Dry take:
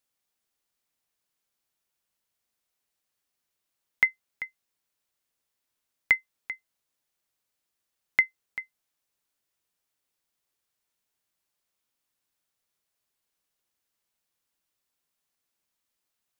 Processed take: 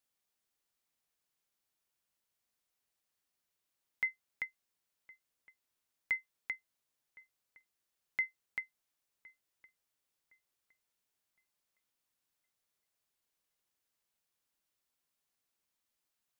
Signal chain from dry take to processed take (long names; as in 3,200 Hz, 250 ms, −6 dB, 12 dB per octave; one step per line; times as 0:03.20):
brickwall limiter −21 dBFS, peak gain reduction 11.5 dB
on a send: feedback echo with a low-pass in the loop 1,063 ms, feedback 39%, level −21.5 dB
on the sum: level −3.5 dB